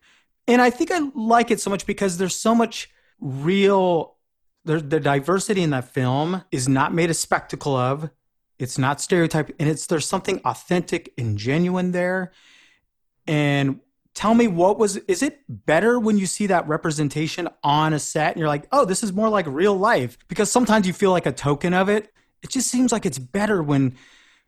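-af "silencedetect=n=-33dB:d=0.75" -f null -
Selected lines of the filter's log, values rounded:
silence_start: 12.26
silence_end: 13.28 | silence_duration: 1.02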